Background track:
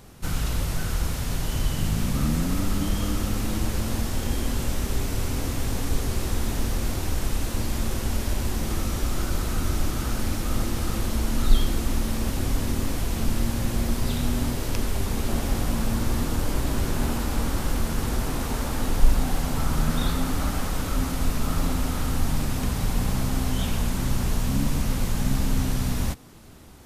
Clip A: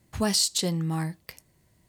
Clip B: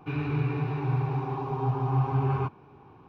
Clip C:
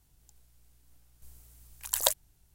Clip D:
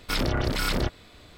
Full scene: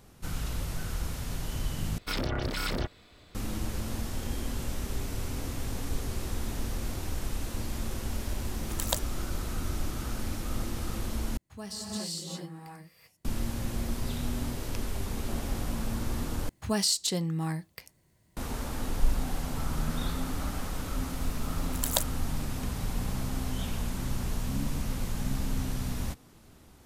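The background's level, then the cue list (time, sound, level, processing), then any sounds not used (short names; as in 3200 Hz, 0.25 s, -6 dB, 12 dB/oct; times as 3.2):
background track -7.5 dB
1.98 replace with D -5.5 dB
6.86 add C -3.5 dB + bell 12000 Hz -5 dB
11.37 replace with A -16.5 dB + non-linear reverb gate 0.42 s rising, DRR -4 dB
16.49 replace with A -3 dB
19.9 add C -2.5 dB
not used: B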